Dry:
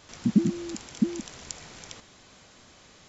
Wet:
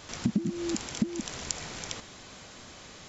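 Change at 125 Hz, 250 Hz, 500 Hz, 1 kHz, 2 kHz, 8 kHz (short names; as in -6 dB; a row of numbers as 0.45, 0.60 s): -3.5 dB, -4.5 dB, -1.0 dB, +4.5 dB, +4.5 dB, n/a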